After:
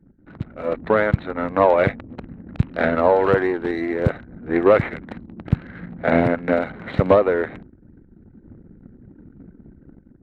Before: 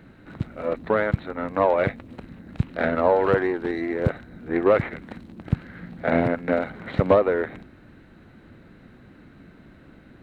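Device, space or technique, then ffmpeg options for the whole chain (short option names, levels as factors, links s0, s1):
voice memo with heavy noise removal: -af "anlmdn=0.0631,dynaudnorm=f=450:g=3:m=2.66,volume=0.841"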